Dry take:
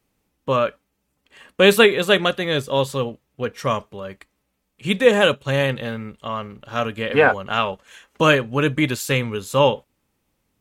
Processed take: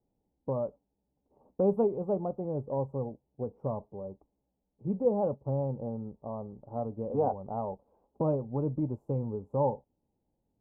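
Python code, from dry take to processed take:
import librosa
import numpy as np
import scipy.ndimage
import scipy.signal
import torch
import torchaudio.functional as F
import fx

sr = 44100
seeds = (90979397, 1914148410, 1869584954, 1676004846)

y = scipy.signal.sosfilt(scipy.signal.ellip(4, 1.0, 50, 860.0, 'lowpass', fs=sr, output='sos'), x)
y = fx.dynamic_eq(y, sr, hz=410.0, q=0.8, threshold_db=-27.0, ratio=4.0, max_db=-6)
y = F.gain(torch.from_numpy(y), -6.5).numpy()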